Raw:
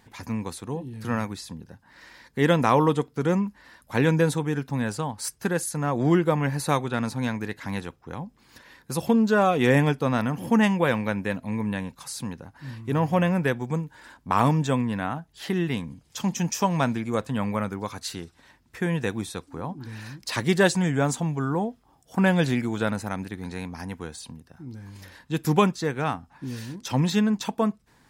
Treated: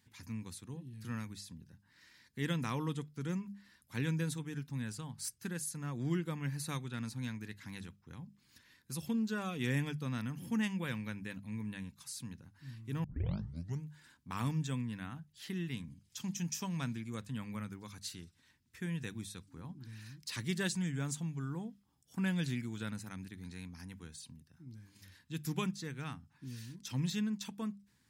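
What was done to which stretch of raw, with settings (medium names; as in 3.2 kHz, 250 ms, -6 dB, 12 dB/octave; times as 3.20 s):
13.04 s: tape start 0.81 s
whole clip: high-pass 78 Hz; amplifier tone stack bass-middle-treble 6-0-2; hum notches 50/100/150/200 Hz; trim +5.5 dB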